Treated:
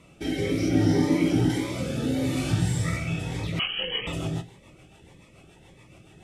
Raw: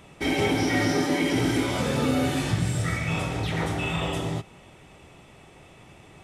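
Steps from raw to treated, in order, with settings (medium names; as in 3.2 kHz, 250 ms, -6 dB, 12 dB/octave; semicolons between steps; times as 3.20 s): 0.68–1.50 s: tilt shelf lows +5 dB, about 660 Hz; gated-style reverb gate 200 ms falling, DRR 6.5 dB; wow and flutter 25 cents; 3.59–4.07 s: frequency inversion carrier 3.1 kHz; rotary cabinet horn 0.65 Hz, later 7 Hz, at 2.96 s; Shepard-style phaser rising 1.7 Hz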